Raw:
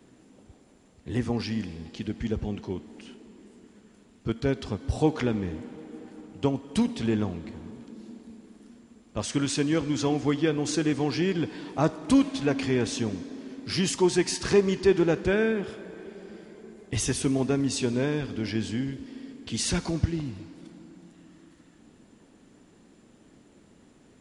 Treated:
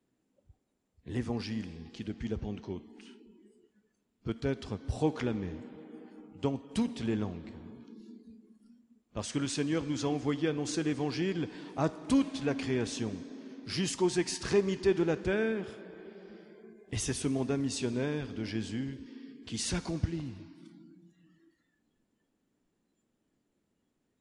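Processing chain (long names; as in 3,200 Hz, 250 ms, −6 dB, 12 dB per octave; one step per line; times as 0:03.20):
noise reduction from a noise print of the clip's start 16 dB
level −6 dB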